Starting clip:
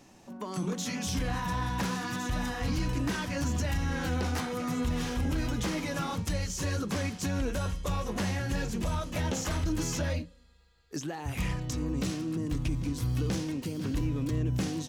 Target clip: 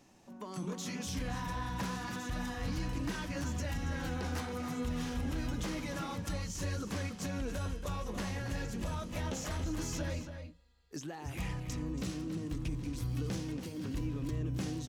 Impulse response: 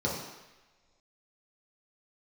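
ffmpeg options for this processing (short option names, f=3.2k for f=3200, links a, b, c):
-filter_complex "[0:a]asplit=2[a][b];[b]adelay=279.9,volume=-8dB,highshelf=f=4k:g=-6.3[c];[a][c]amix=inputs=2:normalize=0,volume=-6.5dB"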